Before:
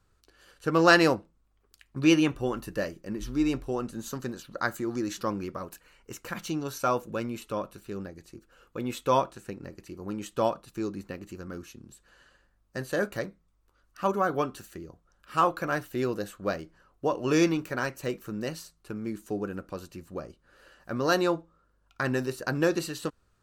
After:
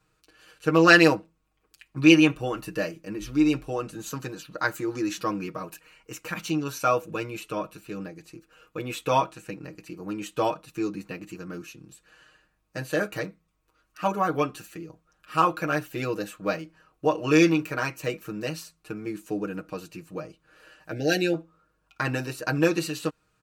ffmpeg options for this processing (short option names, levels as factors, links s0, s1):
-filter_complex "[0:a]asettb=1/sr,asplit=3[s0][s1][s2];[s0]atrim=end=20.914[s3];[s1]atrim=start=20.91:end=21.34,asetpts=PTS-STARTPTS,afade=t=in:d=0.004:c=qsin,afade=t=out:st=0.426:d=0.004:c=qsin,asuperstop=centerf=1100:order=12:qfactor=1.6[s4];[s2]atrim=start=21.336[s5];[s3][s4]acrossfade=d=0.004:c1=hsin:c2=qsin[s6];[s6][s5]acrossfade=d=0.004:c1=qsin:c2=hsin,highpass=f=88:p=1,equalizer=f=2500:t=o:w=0.29:g=8,aecho=1:1:6.4:0.89"